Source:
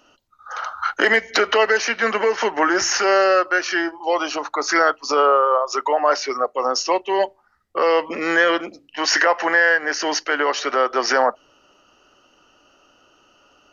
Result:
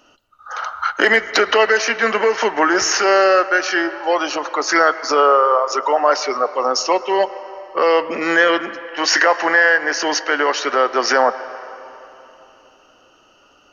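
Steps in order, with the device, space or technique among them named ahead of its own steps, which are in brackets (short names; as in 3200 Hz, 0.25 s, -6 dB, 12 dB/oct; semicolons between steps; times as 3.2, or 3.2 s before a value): filtered reverb send (on a send: HPF 400 Hz + LPF 3400 Hz 12 dB/oct + reverb RT60 3.3 s, pre-delay 0.1 s, DRR 13.5 dB); on the sum: gain +2.5 dB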